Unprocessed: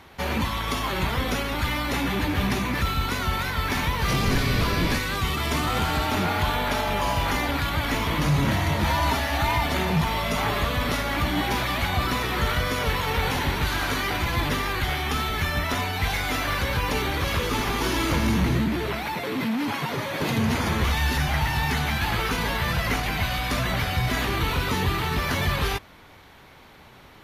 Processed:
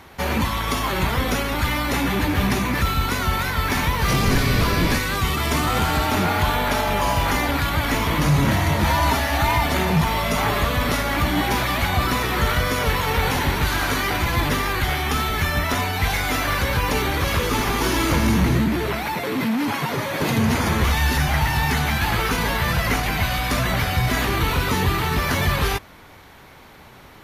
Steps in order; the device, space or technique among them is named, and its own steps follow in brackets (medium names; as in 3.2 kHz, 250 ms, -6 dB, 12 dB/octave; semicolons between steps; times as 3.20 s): exciter from parts (in parallel at -8 dB: high-pass 2.3 kHz 12 dB/octave + saturation -24.5 dBFS, distortion -21 dB + high-pass 3.5 kHz 12 dB/octave); on the sum: trim +4 dB